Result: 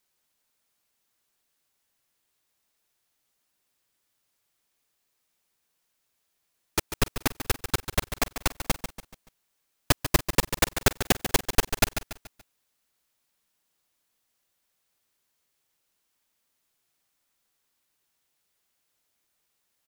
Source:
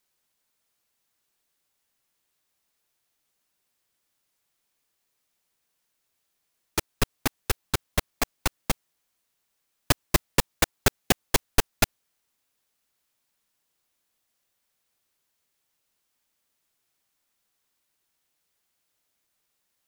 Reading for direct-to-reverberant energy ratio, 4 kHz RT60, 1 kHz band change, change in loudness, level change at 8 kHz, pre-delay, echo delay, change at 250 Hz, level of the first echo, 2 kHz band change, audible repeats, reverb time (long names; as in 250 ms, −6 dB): no reverb audible, no reverb audible, +0.5 dB, +0.5 dB, +0.5 dB, no reverb audible, 143 ms, +0.5 dB, −10.0 dB, +0.5 dB, 4, no reverb audible